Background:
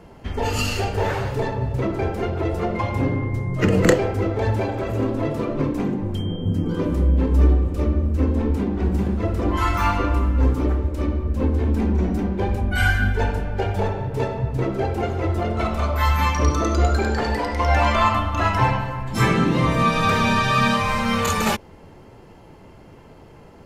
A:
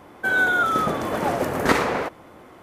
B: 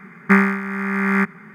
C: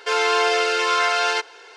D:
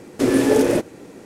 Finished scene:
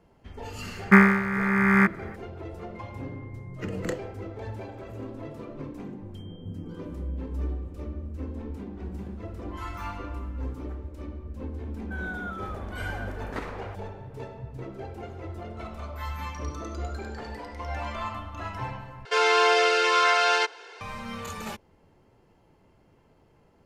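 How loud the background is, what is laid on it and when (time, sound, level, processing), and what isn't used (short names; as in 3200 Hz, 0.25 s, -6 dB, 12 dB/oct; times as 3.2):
background -15.5 dB
0.62 add B -1 dB
11.67 add A -16 dB + high shelf 5300 Hz -11 dB
19.05 replace with C -1 dB + high shelf 6400 Hz -6 dB
not used: D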